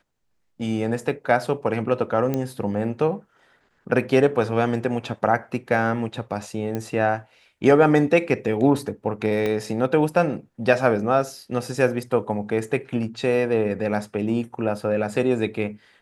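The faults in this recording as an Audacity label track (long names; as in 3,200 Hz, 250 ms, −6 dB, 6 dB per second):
2.340000	2.340000	click −12 dBFS
6.750000	6.750000	click −15 dBFS
9.460000	9.460000	click −13 dBFS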